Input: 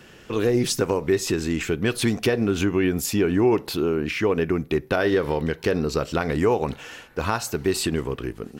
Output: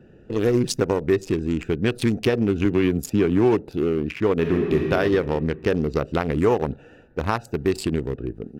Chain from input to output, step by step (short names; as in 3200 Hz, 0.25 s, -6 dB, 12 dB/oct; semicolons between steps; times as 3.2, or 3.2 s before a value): Wiener smoothing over 41 samples; 2.65–3.6 three-band squash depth 40%; 4.36–4.85 reverb throw, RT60 2.4 s, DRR 0.5 dB; gain +2 dB